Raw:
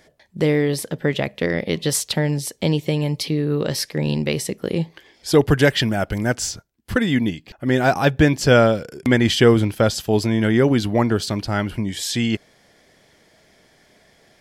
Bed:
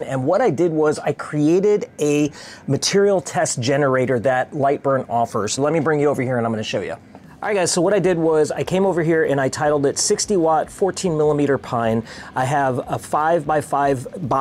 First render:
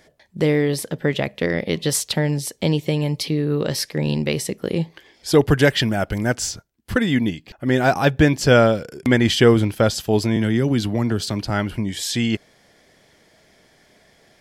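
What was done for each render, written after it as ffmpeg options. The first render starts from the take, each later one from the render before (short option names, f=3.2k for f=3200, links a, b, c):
-filter_complex "[0:a]asettb=1/sr,asplit=3[a][b][c];[a]atrim=end=10.364[d];[b]atrim=start=10.36:end=11.5,asetpts=PTS-STARTPTS,afade=t=in:d=0.004:c=qsin,afade=t=out:st=1.136:d=0.004:c=qsin,acrossover=split=280|3000[e][f][g];[f]acompressor=threshold=-24dB:ratio=6:attack=3.2:release=140:knee=2.83:detection=peak[h];[e][h][g]amix=inputs=3:normalize=0[i];[c]atrim=start=11.496[j];[d][i]acrossfade=d=0.004:c1=hsin:c2=qsin[k];[k][j]acrossfade=d=0.004:c1=qsin:c2=hsin"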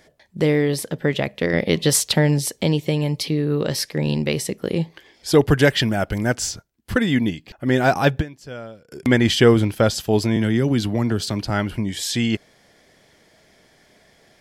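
-filter_complex "[0:a]asplit=5[a][b][c][d][e];[a]atrim=end=1.532[f];[b]atrim=start=1.528:end=2.632,asetpts=PTS-STARTPTS,volume=3.5dB[g];[c]atrim=start=2.628:end=8.33,asetpts=PTS-STARTPTS,afade=t=out:st=5.572:d=0.13:c=exp:silence=0.0891251[h];[d]atrim=start=8.33:end=8.79,asetpts=PTS-STARTPTS,volume=-21dB[i];[e]atrim=start=8.79,asetpts=PTS-STARTPTS,afade=t=in:d=0.13:c=exp:silence=0.0891251[j];[f][g]acrossfade=d=0.004:c1=hsin:c2=hsin[k];[h][i][j]concat=n=3:v=0:a=1[l];[k][l]acrossfade=d=0.004:c1=hsin:c2=hsin"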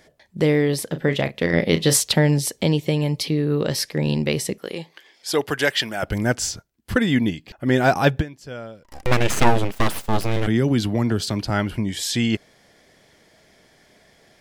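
-filter_complex "[0:a]asettb=1/sr,asplit=3[a][b][c];[a]atrim=end=0.884[d];[b]atrim=start=0.88:end=1.97,asetpts=PTS-STARTPTS,afade=t=in:d=0.004:c=qsin,afade=t=out:st=1.086:d=0.004:c=qsin,asplit=2[e][f];[f]adelay=36,volume=-10dB[g];[e][g]amix=inputs=2:normalize=0,atrim=end_sample=48069[h];[c]atrim=start=1.966[i];[d][h]acrossfade=d=0.004:c1=hsin:c2=qsin[j];[j][i]acrossfade=d=0.004:c1=qsin:c2=hsin,asettb=1/sr,asplit=3[k][l][m];[k]atrim=end=4.584[n];[l]atrim=start=4.58:end=6.03,asetpts=PTS-STARTPTS,afade=t=in:d=0.004:c=qsin,afade=t=out:st=1.446:d=0.004:c=qsin,highpass=f=820:p=1[o];[m]atrim=start=6.026[p];[n][o]acrossfade=d=0.004:c1=hsin:c2=qsin[q];[q][p]acrossfade=d=0.004:c1=qsin:c2=hsin,asplit=3[r][s][t];[r]afade=t=out:st=8.83:d=0.02[u];[s]aeval=exprs='abs(val(0))':c=same,afade=t=in:st=8.83:d=0.02,afade=t=out:st=10.46:d=0.02[v];[t]afade=t=in:st=10.46:d=0.02[w];[u][v][w]amix=inputs=3:normalize=0"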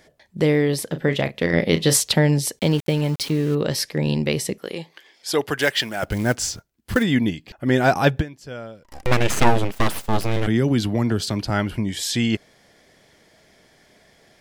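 -filter_complex "[0:a]asettb=1/sr,asplit=3[a][b][c];[a]atrim=end=2.594[d];[b]atrim=start=2.59:end=3.55,asetpts=PTS-STARTPTS,afade=t=in:d=0.004:c=qsin,afade=t=out:st=0.956:d=0.004:c=qsin,aeval=exprs='val(0)*gte(abs(val(0)),0.0237)':c=same[e];[c]atrim=start=3.546[f];[d][e]acrossfade=d=0.004:c1=hsin:c2=qsin[g];[g][f]acrossfade=d=0.004:c1=qsin:c2=hsin,asplit=3[h][i][j];[h]afade=t=out:st=5.57:d=0.02[k];[i]acrusher=bits=5:mode=log:mix=0:aa=0.000001,afade=t=in:st=5.57:d=0.02,afade=t=out:st=7.02:d=0.02[l];[j]afade=t=in:st=7.02:d=0.02[m];[k][l][m]amix=inputs=3:normalize=0"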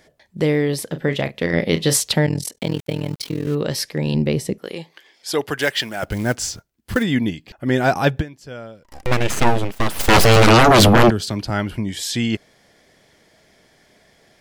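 -filter_complex "[0:a]asettb=1/sr,asplit=3[a][b][c];[a]atrim=end=2.264[d];[b]atrim=start=2.26:end=3.47,asetpts=PTS-STARTPTS,afade=t=in:d=0.004:c=qsin,afade=t=out:st=1.206:d=0.004:c=qsin,tremolo=f=41:d=0.947[e];[c]atrim=start=3.466[f];[d][e]acrossfade=d=0.004:c1=hsin:c2=qsin[g];[g][f]acrossfade=d=0.004:c1=qsin:c2=hsin,asettb=1/sr,asplit=3[h][i][j];[h]atrim=end=4.144[k];[i]atrim=start=4.14:end=4.64,asetpts=PTS-STARTPTS,afade=t=in:d=0.004:c=qsin,afade=t=out:st=0.496:d=0.004:c=qsin,tiltshelf=f=700:g=5[l];[j]atrim=start=4.636[m];[k][l]acrossfade=d=0.004:c1=hsin:c2=qsin[n];[n][m]acrossfade=d=0.004:c1=qsin:c2=hsin,asplit=3[o][p][q];[o]afade=t=out:st=9.99:d=0.02[r];[p]aeval=exprs='0.447*sin(PI/2*6.31*val(0)/0.447)':c=same,afade=t=in:st=9.99:d=0.02,afade=t=out:st=11.09:d=0.02[s];[q]afade=t=in:st=11.09:d=0.02[t];[r][s][t]amix=inputs=3:normalize=0"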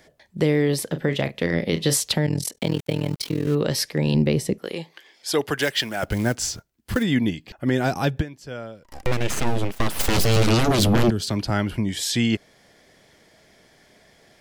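-filter_complex "[0:a]acrossover=split=430|3000[a][b][c];[b]acompressor=threshold=-22dB:ratio=6[d];[a][d][c]amix=inputs=3:normalize=0,alimiter=limit=-9.5dB:level=0:latency=1:release=264"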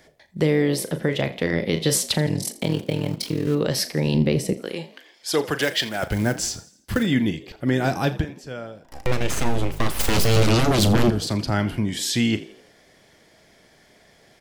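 -filter_complex "[0:a]asplit=2[a][b];[b]adelay=38,volume=-13dB[c];[a][c]amix=inputs=2:normalize=0,asplit=5[d][e][f][g][h];[e]adelay=83,afreqshift=50,volume=-18dB[i];[f]adelay=166,afreqshift=100,volume=-24.6dB[j];[g]adelay=249,afreqshift=150,volume=-31.1dB[k];[h]adelay=332,afreqshift=200,volume=-37.7dB[l];[d][i][j][k][l]amix=inputs=5:normalize=0"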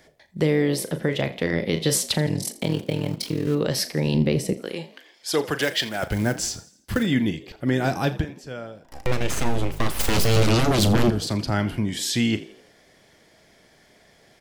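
-af "volume=-1dB"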